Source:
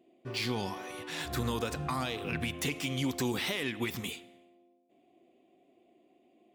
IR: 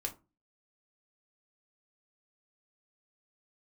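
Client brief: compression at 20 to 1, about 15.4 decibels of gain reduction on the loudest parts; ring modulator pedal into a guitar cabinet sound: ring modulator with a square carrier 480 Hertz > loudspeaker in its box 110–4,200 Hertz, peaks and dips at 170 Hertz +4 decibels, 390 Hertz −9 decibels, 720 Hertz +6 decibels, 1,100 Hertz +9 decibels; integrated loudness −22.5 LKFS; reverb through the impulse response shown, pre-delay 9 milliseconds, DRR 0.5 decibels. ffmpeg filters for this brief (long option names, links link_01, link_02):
-filter_complex "[0:a]acompressor=threshold=-43dB:ratio=20,asplit=2[link_01][link_02];[1:a]atrim=start_sample=2205,adelay=9[link_03];[link_02][link_03]afir=irnorm=-1:irlink=0,volume=-1dB[link_04];[link_01][link_04]amix=inputs=2:normalize=0,aeval=exprs='val(0)*sgn(sin(2*PI*480*n/s))':channel_layout=same,highpass=110,equalizer=frequency=170:width_type=q:width=4:gain=4,equalizer=frequency=390:width_type=q:width=4:gain=-9,equalizer=frequency=720:width_type=q:width=4:gain=6,equalizer=frequency=1100:width_type=q:width=4:gain=9,lowpass=frequency=4200:width=0.5412,lowpass=frequency=4200:width=1.3066,volume=20dB"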